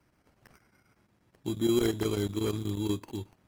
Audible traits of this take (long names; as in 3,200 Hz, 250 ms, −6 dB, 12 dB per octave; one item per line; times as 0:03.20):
chopped level 8.3 Hz, depth 65%, duty 85%
aliases and images of a low sample rate 3,600 Hz, jitter 0%
AAC